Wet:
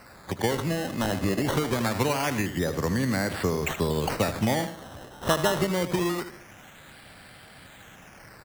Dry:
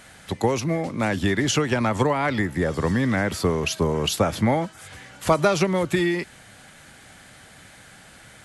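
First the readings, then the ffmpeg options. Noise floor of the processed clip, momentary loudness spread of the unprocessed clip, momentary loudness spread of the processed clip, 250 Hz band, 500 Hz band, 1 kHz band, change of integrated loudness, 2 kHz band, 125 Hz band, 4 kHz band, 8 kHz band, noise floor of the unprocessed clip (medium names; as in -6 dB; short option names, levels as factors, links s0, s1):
-50 dBFS, 8 LU, 9 LU, -4.0 dB, -4.5 dB, -4.0 dB, -4.0 dB, -4.0 dB, -4.0 dB, -3.5 dB, -3.5 dB, -48 dBFS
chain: -filter_complex "[0:a]aecho=1:1:77|154|231|308:0.266|0.101|0.0384|0.0146,asplit=2[s0][s1];[s1]acompressor=threshold=0.0398:ratio=6,volume=0.841[s2];[s0][s2]amix=inputs=2:normalize=0,acrusher=samples=13:mix=1:aa=0.000001:lfo=1:lforange=13:lforate=0.24,volume=0.473"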